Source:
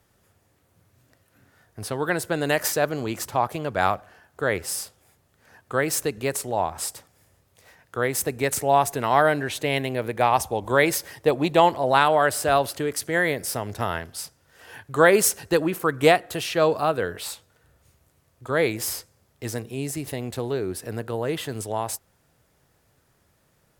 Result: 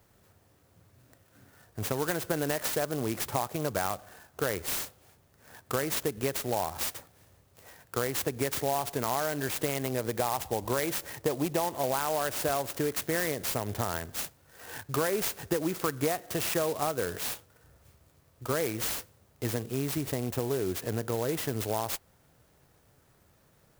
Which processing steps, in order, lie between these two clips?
in parallel at +2.5 dB: peak limiter -12.5 dBFS, peak gain reduction 9 dB; on the sum: compression, threshold -20 dBFS, peak gain reduction 12.5 dB; sampling jitter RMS 0.075 ms; trim -6 dB

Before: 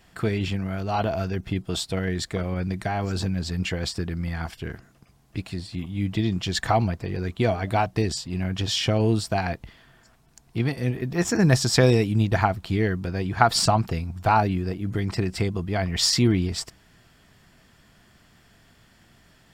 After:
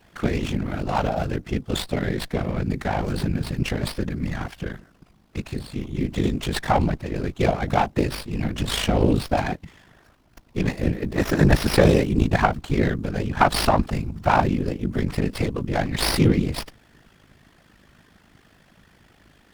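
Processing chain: ring modulator 26 Hz; whisper effect; sliding maximum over 5 samples; trim +5 dB

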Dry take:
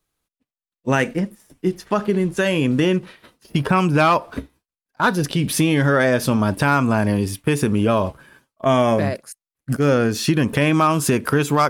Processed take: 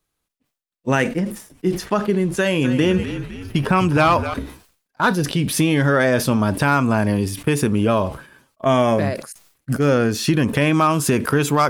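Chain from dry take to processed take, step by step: 2.34–4.34 s: frequency-shifting echo 255 ms, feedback 50%, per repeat -48 Hz, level -10.5 dB; decay stretcher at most 120 dB/s

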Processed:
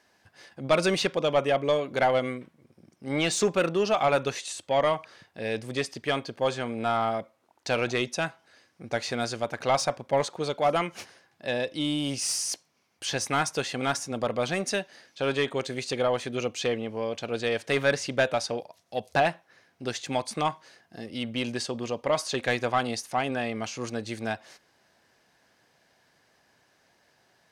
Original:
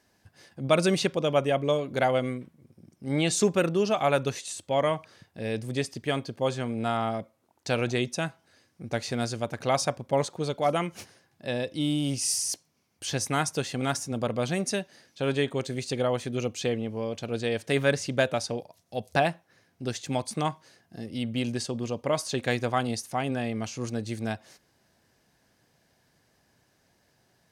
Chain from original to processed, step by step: overdrive pedal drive 13 dB, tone 3.6 kHz, clips at -10 dBFS; trim -2 dB

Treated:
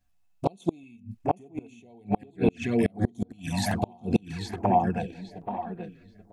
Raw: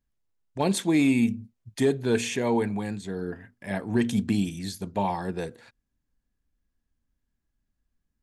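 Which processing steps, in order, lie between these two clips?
in parallel at +1.5 dB: compression 16:1, threshold -31 dBFS, peak gain reduction 14 dB; on the sum: filtered feedback delay 1072 ms, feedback 33%, low-pass 3.1 kHz, level -3 dB; tempo 1.3×; small resonant body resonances 720/2600 Hz, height 15 dB, ringing for 70 ms; touch-sensitive flanger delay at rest 10.9 ms, full sweep at -18.5 dBFS; inverted gate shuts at -13 dBFS, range -33 dB; step-sequenced notch 2.4 Hz 400–5700 Hz; trim +3.5 dB

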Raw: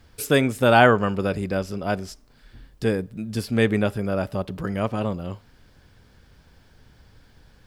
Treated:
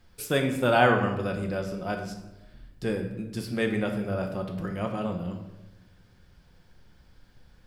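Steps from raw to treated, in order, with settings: simulated room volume 420 m³, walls mixed, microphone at 0.91 m; trim -7 dB

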